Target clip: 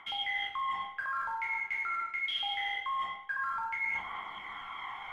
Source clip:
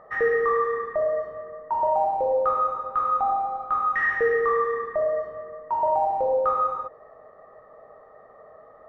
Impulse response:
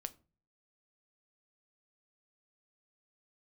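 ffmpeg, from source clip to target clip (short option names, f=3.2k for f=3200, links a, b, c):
-filter_complex "[0:a]bandreject=f=50:t=h:w=6,bandreject=f=100:t=h:w=6,bandreject=f=150:t=h:w=6,bandreject=f=200:t=h:w=6,bandreject=f=250:t=h:w=6,bandreject=f=300:t=h:w=6,bandreject=f=350:t=h:w=6,asetrate=76440,aresample=44100,aphaser=in_gain=1:out_gain=1:delay=3:decay=0.36:speed=0.24:type=triangular,highshelf=f=2.2k:g=9.5,acrossover=split=120|1200[a][b][c];[b]alimiter=limit=-23dB:level=0:latency=1[d];[a][d][c]amix=inputs=3:normalize=0[e];[1:a]atrim=start_sample=2205,asetrate=30429,aresample=44100[f];[e][f]afir=irnorm=-1:irlink=0,areverse,acompressor=threshold=-38dB:ratio=8,areverse,volume=5dB"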